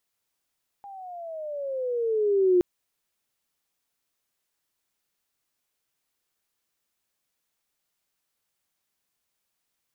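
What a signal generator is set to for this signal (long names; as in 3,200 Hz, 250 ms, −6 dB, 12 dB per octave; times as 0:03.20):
pitch glide with a swell sine, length 1.77 s, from 813 Hz, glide −14.5 semitones, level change +24 dB, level −15.5 dB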